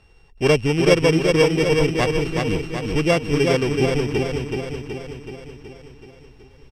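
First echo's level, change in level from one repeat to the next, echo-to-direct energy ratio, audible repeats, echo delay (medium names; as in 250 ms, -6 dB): -4.0 dB, -4.5 dB, -2.0 dB, 7, 375 ms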